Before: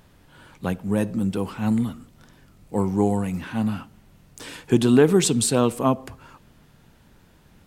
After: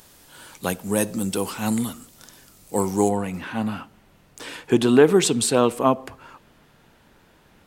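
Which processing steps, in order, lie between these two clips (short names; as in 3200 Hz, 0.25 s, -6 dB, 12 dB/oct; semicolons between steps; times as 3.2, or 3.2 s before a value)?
tone controls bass -9 dB, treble +13 dB, from 3.08 s treble -4 dB; gain +3.5 dB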